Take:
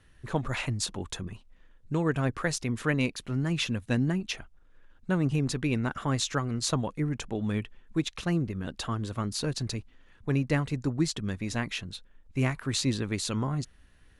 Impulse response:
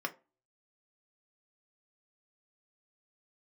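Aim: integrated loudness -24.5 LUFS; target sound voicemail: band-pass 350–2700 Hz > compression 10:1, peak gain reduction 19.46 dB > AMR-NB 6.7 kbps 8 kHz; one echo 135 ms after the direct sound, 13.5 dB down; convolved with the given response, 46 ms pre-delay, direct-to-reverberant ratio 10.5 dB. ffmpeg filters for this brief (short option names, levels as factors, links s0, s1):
-filter_complex "[0:a]aecho=1:1:135:0.211,asplit=2[s0][s1];[1:a]atrim=start_sample=2205,adelay=46[s2];[s1][s2]afir=irnorm=-1:irlink=0,volume=0.188[s3];[s0][s3]amix=inputs=2:normalize=0,highpass=350,lowpass=2700,acompressor=threshold=0.00708:ratio=10,volume=18.8" -ar 8000 -c:a libopencore_amrnb -b:a 6700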